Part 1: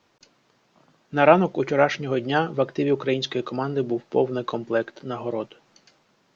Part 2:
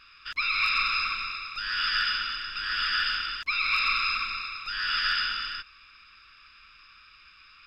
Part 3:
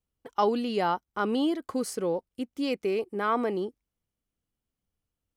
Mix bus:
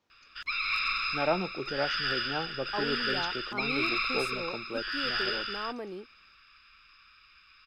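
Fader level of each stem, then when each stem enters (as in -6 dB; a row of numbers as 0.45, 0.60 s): -13.0, -4.5, -10.5 dB; 0.00, 0.10, 2.35 s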